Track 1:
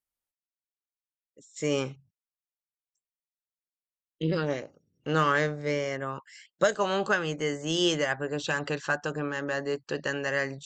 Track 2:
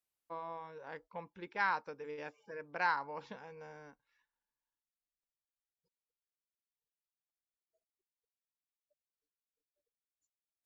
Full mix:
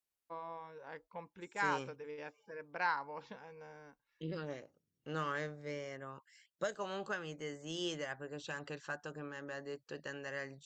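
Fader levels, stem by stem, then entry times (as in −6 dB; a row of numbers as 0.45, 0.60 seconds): −14.0, −2.0 decibels; 0.00, 0.00 seconds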